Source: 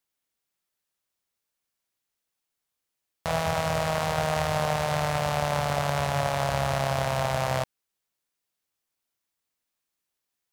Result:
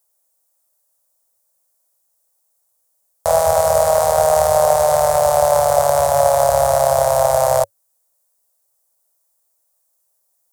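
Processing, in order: EQ curve 100 Hz 0 dB, 260 Hz -25 dB, 560 Hz +11 dB, 2700 Hz -12 dB, 8500 Hz +12 dB; gain +6.5 dB

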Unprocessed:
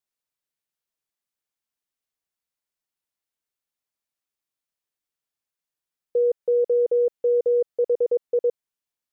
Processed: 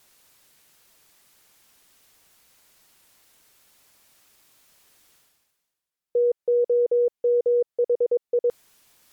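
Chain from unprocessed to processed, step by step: reverse; upward compressor, threshold -35 dBFS; reverse; MP3 96 kbps 48000 Hz

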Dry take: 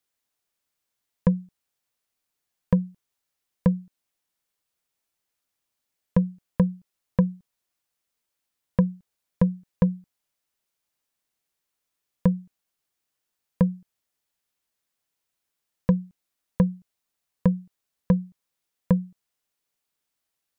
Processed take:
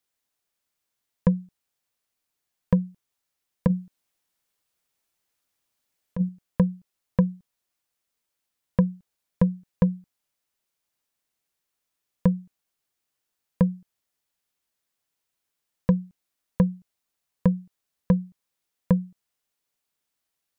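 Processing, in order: 3.67–6.29 negative-ratio compressor -21 dBFS, ratio -0.5

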